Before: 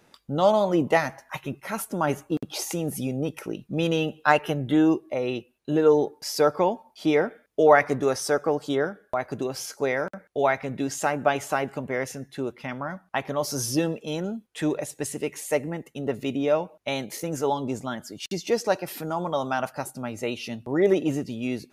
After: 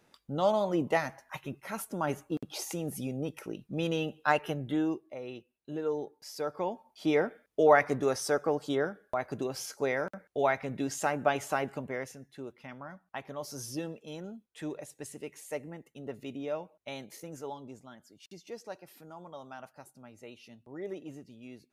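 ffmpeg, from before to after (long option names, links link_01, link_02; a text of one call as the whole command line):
ffmpeg -i in.wav -af "volume=2dB,afade=type=out:start_time=4.49:duration=0.61:silence=0.446684,afade=type=in:start_time=6.46:duration=0.71:silence=0.354813,afade=type=out:start_time=11.72:duration=0.45:silence=0.421697,afade=type=out:start_time=17.08:duration=0.75:silence=0.473151" out.wav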